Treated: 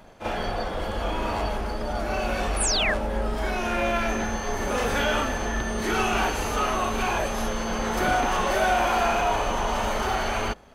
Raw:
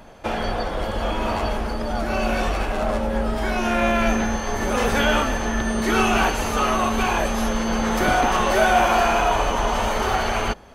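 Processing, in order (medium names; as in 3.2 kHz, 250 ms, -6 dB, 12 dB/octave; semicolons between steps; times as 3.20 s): waveshaping leveller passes 1; painted sound fall, 2.60–2.94 s, 1.5–11 kHz -18 dBFS; reverse echo 38 ms -8 dB; trim -7.5 dB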